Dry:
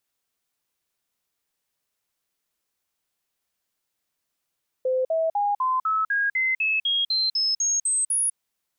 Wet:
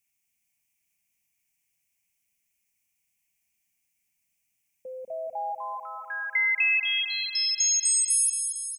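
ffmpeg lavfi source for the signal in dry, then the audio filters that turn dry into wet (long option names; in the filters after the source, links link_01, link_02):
-f lavfi -i "aevalsrc='0.1*clip(min(mod(t,0.25),0.2-mod(t,0.25))/0.005,0,1)*sin(2*PI*515*pow(2,floor(t/0.25)/3)*mod(t,0.25))':duration=3.5:sample_rate=44100"
-filter_complex "[0:a]firequalizer=gain_entry='entry(220,0);entry(420,-18);entry(760,-7);entry(1300,-19);entry(2300,9);entry(3800,-13);entry(5900,3)':delay=0.05:min_phase=1,acompressor=threshold=-22dB:ratio=6,asplit=2[link_01][link_02];[link_02]aecho=0:1:227|454|681|908|1135|1362|1589:0.447|0.259|0.15|0.0872|0.0505|0.0293|0.017[link_03];[link_01][link_03]amix=inputs=2:normalize=0"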